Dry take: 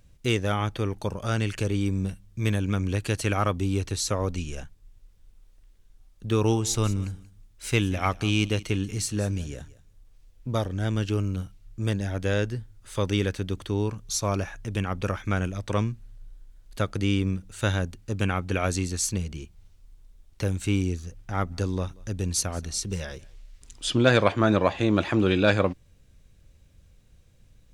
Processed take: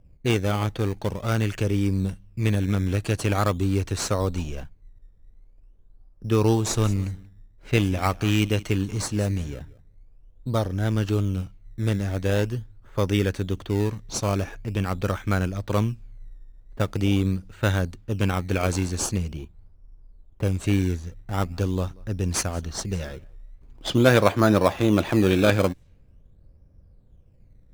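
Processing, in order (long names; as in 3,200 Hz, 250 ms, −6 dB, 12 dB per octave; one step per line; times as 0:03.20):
low-pass that shuts in the quiet parts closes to 770 Hz, open at −24 dBFS
in parallel at −5 dB: sample-and-hold swept by an LFO 16×, swing 100% 0.44 Hz
on the sum: level −1 dB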